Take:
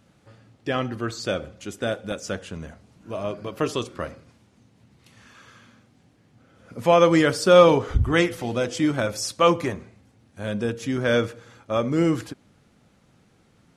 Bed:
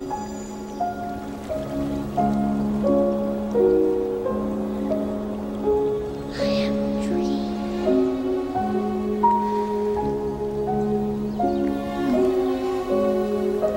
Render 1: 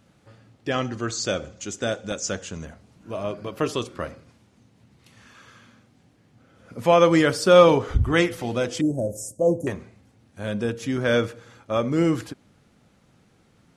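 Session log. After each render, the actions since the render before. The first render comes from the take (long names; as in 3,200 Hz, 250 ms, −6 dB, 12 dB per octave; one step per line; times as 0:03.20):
0:00.71–0:02.65: low-pass with resonance 6,800 Hz, resonance Q 3.7
0:08.81–0:09.67: elliptic band-stop filter 630–7,300 Hz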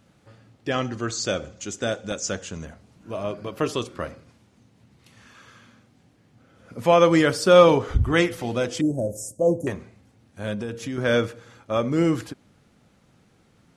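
0:10.54–0:10.98: downward compressor, threshold −26 dBFS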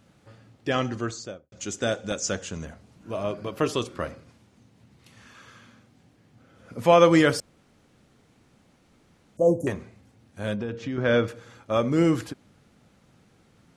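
0:00.90–0:01.52: fade out and dull
0:07.40–0:09.37: fill with room tone
0:10.56–0:11.28: high-frequency loss of the air 160 metres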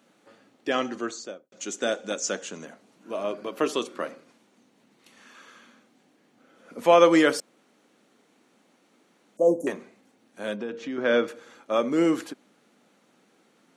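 high-pass filter 230 Hz 24 dB per octave
notch filter 5,000 Hz, Q 15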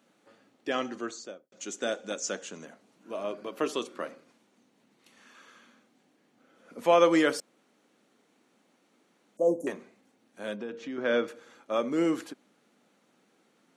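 level −4.5 dB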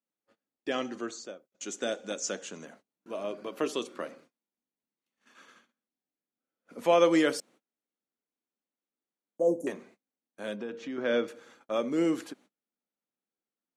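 noise gate −55 dBFS, range −30 dB
dynamic equaliser 1,200 Hz, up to −4 dB, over −39 dBFS, Q 0.97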